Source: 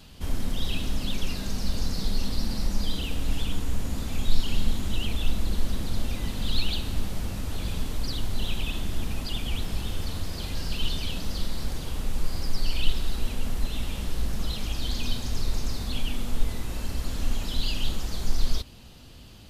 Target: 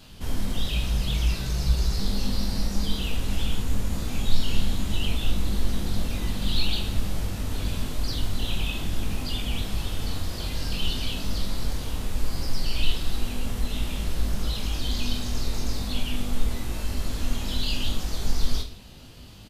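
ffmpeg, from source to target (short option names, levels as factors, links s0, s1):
-filter_complex "[0:a]aecho=1:1:20|45|76.25|115.3|164.1:0.631|0.398|0.251|0.158|0.1,asettb=1/sr,asplit=3[s0][s1][s2];[s0]atrim=end=0.694[s3];[s1]atrim=start=0.69:end=1.99,asetpts=PTS-STARTPTS,afade=t=in:d=0.004:c=qsin,afade=t=out:st=1.296:d=0.004:c=qsin,afreqshift=-67[s4];[s2]atrim=start=1.986[s5];[s3][s4]acrossfade=d=0.004:c1=hsin:c2=qsin[s6];[s6][s5]acrossfade=d=0.004:c1=qsin:c2=hsin"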